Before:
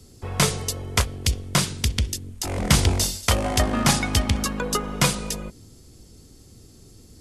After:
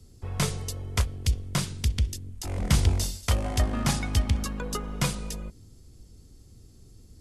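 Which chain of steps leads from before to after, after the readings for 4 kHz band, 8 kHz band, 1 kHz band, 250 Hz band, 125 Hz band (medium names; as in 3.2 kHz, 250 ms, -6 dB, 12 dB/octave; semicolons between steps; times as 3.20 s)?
-9.0 dB, -9.0 dB, -9.0 dB, -6.0 dB, -2.5 dB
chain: bass shelf 120 Hz +11 dB; trim -9 dB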